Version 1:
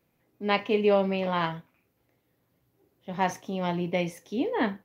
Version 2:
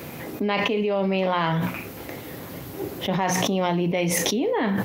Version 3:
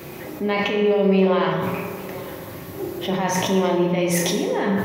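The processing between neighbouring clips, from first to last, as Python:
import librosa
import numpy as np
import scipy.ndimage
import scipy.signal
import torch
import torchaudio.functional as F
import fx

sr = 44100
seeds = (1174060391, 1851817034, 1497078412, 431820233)

y1 = scipy.signal.sosfilt(scipy.signal.butter(2, 69.0, 'highpass', fs=sr, output='sos'), x)
y1 = fx.hum_notches(y1, sr, base_hz=60, count=3)
y1 = fx.env_flatten(y1, sr, amount_pct=100)
y1 = F.gain(torch.from_numpy(y1), -4.0).numpy()
y2 = y1 + 10.0 ** (-19.0 / 20.0) * np.pad(y1, (int(854 * sr / 1000.0), 0))[:len(y1)]
y2 = fx.rev_fdn(y2, sr, rt60_s=1.8, lf_ratio=0.75, hf_ratio=0.45, size_ms=16.0, drr_db=0.5)
y2 = F.gain(torch.from_numpy(y2), -1.5).numpy()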